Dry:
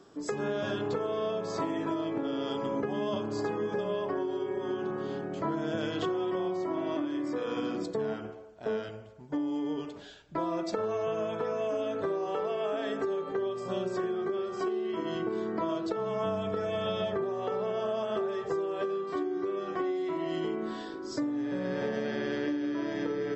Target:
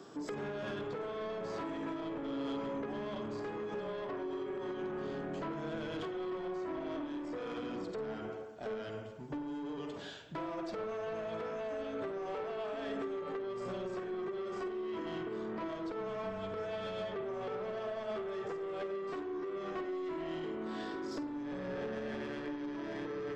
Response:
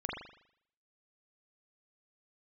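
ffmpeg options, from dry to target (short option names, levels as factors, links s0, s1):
-filter_complex "[0:a]acrossover=split=3900[s0][s1];[s1]acompressor=threshold=0.00126:ratio=4:attack=1:release=60[s2];[s0][s2]amix=inputs=2:normalize=0,highpass=99,acompressor=threshold=0.0141:ratio=6,asoftclip=type=tanh:threshold=0.0112,asplit=2[s3][s4];[1:a]atrim=start_sample=2205,adelay=50[s5];[s4][s5]afir=irnorm=-1:irlink=0,volume=0.266[s6];[s3][s6]amix=inputs=2:normalize=0,volume=1.58"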